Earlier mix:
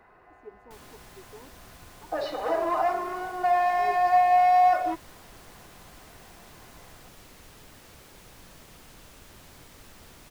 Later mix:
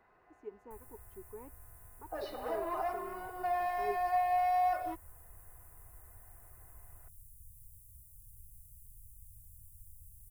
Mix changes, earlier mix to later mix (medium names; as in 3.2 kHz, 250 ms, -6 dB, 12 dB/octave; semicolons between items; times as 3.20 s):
first sound: add inverse Chebyshev band-stop 400–2900 Hz, stop band 70 dB; second sound -10.5 dB